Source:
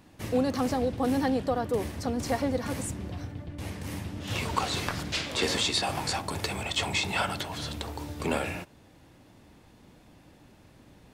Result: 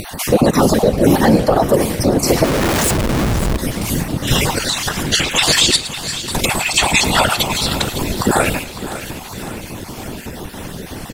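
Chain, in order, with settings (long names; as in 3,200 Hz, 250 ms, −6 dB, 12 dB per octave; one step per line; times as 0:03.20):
time-frequency cells dropped at random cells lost 30%
high-shelf EQ 7,300 Hz +10 dB
0:04.53–0:05.12: downward compressor, threshold −33 dBFS, peak gain reduction 7.5 dB
0:05.76–0:06.35: guitar amp tone stack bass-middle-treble 6-0-2
echo with shifted repeats 109 ms, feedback 36%, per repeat −49 Hz, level −17.5 dB
random phases in short frames
0:02.44–0:03.57: comparator with hysteresis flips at −40.5 dBFS
upward compression, threshold −34 dBFS
boost into a limiter +17.5 dB
feedback echo at a low word length 554 ms, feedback 55%, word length 7 bits, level −13 dB
level −1 dB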